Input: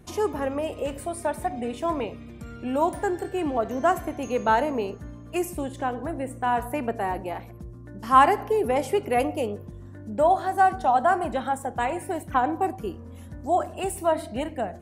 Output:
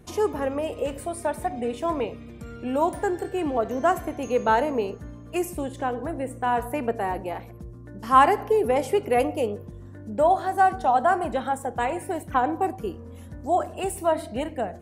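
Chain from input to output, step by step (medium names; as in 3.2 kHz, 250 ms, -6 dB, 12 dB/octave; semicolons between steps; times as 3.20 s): peaking EQ 470 Hz +4.5 dB 0.25 oct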